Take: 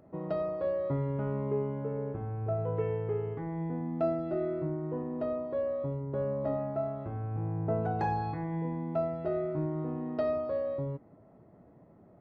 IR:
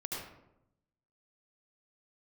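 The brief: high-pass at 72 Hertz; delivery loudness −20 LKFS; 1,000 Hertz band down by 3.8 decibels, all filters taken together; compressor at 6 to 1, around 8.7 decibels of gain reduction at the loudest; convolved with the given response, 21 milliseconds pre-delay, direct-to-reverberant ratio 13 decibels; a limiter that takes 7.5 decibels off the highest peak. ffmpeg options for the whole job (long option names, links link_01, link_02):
-filter_complex "[0:a]highpass=72,equalizer=frequency=1000:width_type=o:gain=-5.5,acompressor=threshold=-37dB:ratio=6,alimiter=level_in=10.5dB:limit=-24dB:level=0:latency=1,volume=-10.5dB,asplit=2[link_01][link_02];[1:a]atrim=start_sample=2205,adelay=21[link_03];[link_02][link_03]afir=irnorm=-1:irlink=0,volume=-15dB[link_04];[link_01][link_04]amix=inputs=2:normalize=0,volume=22dB"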